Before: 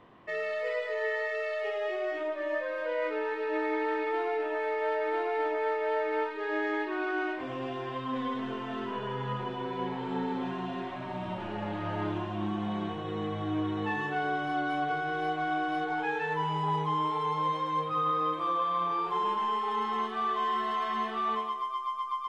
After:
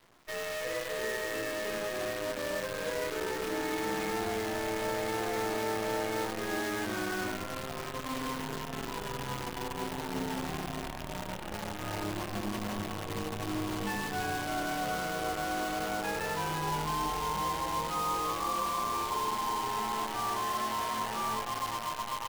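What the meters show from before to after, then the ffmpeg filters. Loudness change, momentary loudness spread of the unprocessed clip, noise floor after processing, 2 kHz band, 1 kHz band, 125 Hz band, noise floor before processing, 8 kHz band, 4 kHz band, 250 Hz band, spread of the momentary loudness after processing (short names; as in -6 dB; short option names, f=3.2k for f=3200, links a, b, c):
-2.0 dB, 6 LU, -39 dBFS, -2.0 dB, -3.0 dB, -1.5 dB, -37 dBFS, n/a, +4.5 dB, -2.5 dB, 6 LU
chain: -filter_complex "[0:a]asplit=9[a][b][c][d][e][f][g][h][i];[b]adelay=344,afreqshift=-110,volume=-6dB[j];[c]adelay=688,afreqshift=-220,volume=-10.7dB[k];[d]adelay=1032,afreqshift=-330,volume=-15.5dB[l];[e]adelay=1376,afreqshift=-440,volume=-20.2dB[m];[f]adelay=1720,afreqshift=-550,volume=-24.9dB[n];[g]adelay=2064,afreqshift=-660,volume=-29.7dB[o];[h]adelay=2408,afreqshift=-770,volume=-34.4dB[p];[i]adelay=2752,afreqshift=-880,volume=-39.1dB[q];[a][j][k][l][m][n][o][p][q]amix=inputs=9:normalize=0,acrusher=bits=6:dc=4:mix=0:aa=0.000001,volume=-4.5dB"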